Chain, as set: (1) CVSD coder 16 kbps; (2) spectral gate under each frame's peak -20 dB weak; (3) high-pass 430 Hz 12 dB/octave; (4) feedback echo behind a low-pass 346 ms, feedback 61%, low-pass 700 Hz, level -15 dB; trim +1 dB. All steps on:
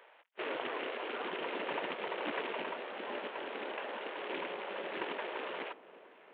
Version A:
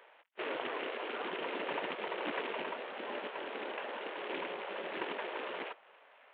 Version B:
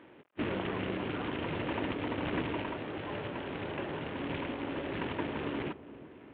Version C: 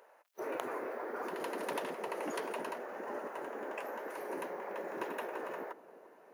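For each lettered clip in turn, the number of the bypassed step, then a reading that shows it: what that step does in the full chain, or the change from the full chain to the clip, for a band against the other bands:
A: 4, echo-to-direct -20.5 dB to none; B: 2, 125 Hz band +23.5 dB; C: 1, 4 kHz band -10.0 dB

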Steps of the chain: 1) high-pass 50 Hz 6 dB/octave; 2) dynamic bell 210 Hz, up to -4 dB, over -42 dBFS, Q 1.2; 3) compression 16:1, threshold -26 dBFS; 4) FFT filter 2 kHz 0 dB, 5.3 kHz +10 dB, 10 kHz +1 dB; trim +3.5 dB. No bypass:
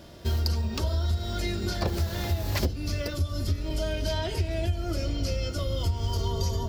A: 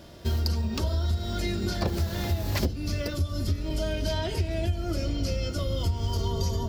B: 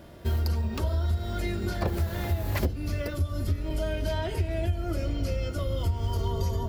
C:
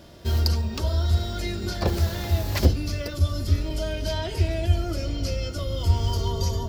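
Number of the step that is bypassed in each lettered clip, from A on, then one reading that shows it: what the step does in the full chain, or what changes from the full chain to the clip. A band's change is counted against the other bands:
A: 2, 250 Hz band +2.5 dB; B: 4, 4 kHz band -6.5 dB; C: 3, mean gain reduction 2.5 dB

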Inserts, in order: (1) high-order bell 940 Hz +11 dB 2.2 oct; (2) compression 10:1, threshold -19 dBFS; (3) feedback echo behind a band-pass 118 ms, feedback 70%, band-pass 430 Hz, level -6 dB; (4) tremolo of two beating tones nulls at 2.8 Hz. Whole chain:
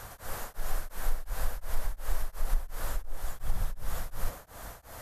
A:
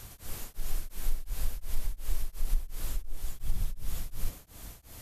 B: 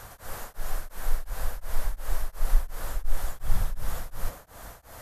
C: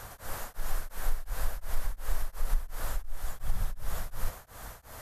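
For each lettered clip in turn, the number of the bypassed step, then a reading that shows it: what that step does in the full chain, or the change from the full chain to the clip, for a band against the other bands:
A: 1, momentary loudness spread change +1 LU; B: 2, mean gain reduction 2.5 dB; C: 3, 500 Hz band -1.5 dB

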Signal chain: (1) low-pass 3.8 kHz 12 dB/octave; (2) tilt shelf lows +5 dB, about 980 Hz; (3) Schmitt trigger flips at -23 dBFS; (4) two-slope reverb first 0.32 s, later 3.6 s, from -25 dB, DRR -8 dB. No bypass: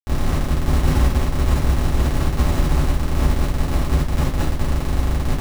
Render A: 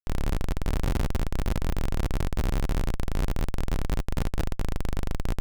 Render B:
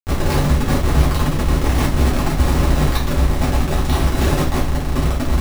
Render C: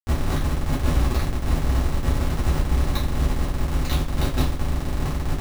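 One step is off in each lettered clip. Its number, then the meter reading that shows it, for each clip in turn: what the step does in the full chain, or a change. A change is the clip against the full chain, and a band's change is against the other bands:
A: 4, crest factor change -5.0 dB; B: 1, 125 Hz band -3.0 dB; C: 2, 4 kHz band +2.0 dB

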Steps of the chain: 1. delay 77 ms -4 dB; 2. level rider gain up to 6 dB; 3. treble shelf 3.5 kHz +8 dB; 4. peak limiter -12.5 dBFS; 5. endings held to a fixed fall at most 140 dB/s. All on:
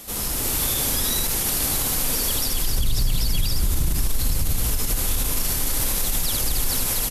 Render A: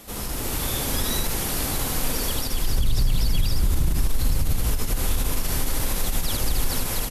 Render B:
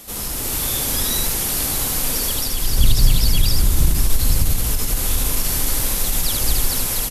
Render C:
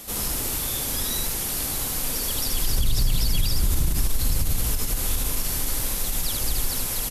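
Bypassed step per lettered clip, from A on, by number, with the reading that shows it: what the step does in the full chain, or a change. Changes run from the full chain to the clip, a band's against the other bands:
3, 8 kHz band -6.5 dB; 4, mean gain reduction 3.0 dB; 2, crest factor change +1.5 dB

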